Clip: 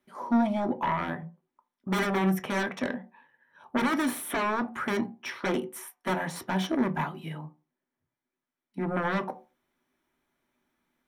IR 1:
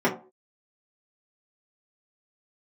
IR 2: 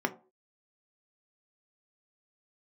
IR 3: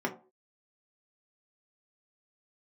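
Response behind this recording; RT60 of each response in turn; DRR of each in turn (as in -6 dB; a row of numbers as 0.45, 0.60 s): 2; not exponential, not exponential, not exponential; -7.5, 5.5, -0.5 dB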